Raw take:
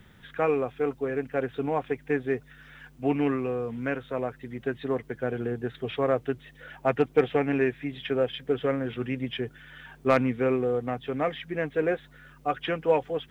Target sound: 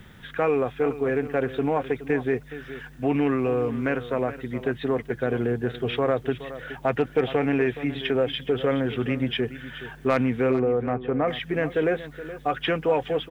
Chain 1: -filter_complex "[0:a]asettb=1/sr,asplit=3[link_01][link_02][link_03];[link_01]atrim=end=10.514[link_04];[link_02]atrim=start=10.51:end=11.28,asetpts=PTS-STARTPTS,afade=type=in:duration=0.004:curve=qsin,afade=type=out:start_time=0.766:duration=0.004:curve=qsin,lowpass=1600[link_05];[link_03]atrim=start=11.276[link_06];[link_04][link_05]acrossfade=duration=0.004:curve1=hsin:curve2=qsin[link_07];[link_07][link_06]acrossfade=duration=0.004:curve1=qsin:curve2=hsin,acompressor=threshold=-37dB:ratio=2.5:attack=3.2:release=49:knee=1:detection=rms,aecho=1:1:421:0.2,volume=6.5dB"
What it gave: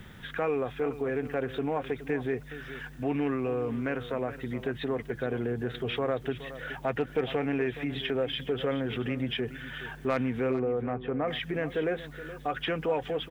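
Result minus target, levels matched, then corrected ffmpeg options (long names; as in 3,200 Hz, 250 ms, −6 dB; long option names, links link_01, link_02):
downward compressor: peak gain reduction +6.5 dB
-filter_complex "[0:a]asettb=1/sr,asplit=3[link_01][link_02][link_03];[link_01]atrim=end=10.514[link_04];[link_02]atrim=start=10.51:end=11.28,asetpts=PTS-STARTPTS,afade=type=in:duration=0.004:curve=qsin,afade=type=out:start_time=0.766:duration=0.004:curve=qsin,lowpass=1600[link_05];[link_03]atrim=start=11.276[link_06];[link_04][link_05]acrossfade=duration=0.004:curve1=hsin:curve2=qsin[link_07];[link_07][link_06]acrossfade=duration=0.004:curve1=qsin:curve2=hsin,acompressor=threshold=-26.5dB:ratio=2.5:attack=3.2:release=49:knee=1:detection=rms,aecho=1:1:421:0.2,volume=6.5dB"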